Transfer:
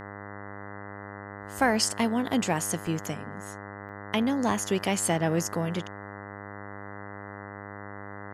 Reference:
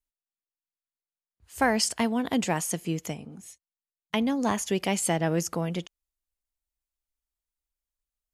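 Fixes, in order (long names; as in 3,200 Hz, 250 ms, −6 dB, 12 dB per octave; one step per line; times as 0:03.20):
hum removal 100.8 Hz, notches 20
repair the gap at 0:02.87/0:03.89, 1.9 ms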